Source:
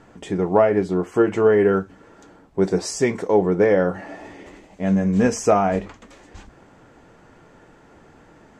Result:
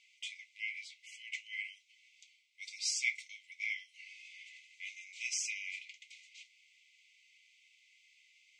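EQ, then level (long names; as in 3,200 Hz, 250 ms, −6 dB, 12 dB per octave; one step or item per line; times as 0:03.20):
linear-phase brick-wall high-pass 2,000 Hz
high-frequency loss of the air 54 metres
high-shelf EQ 8,300 Hz −9 dB
+1.5 dB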